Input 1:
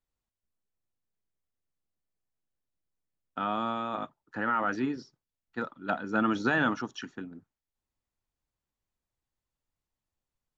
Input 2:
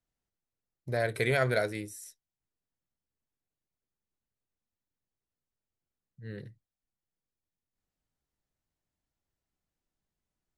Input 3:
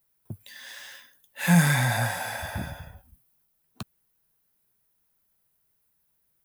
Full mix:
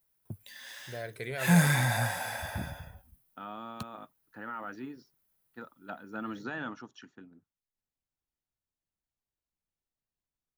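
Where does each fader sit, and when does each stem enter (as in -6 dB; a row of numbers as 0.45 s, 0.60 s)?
-11.5 dB, -10.0 dB, -3.5 dB; 0.00 s, 0.00 s, 0.00 s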